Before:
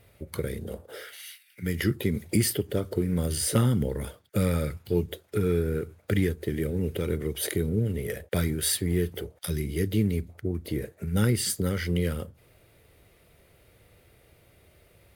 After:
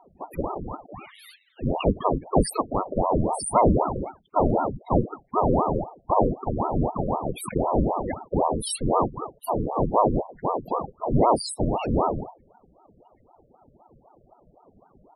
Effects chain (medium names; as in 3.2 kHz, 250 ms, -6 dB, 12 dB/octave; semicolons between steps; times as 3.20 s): short-mantissa float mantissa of 4-bit; loudest bins only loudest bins 8; ring modulator with a swept carrier 450 Hz, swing 90%, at 3.9 Hz; trim +7.5 dB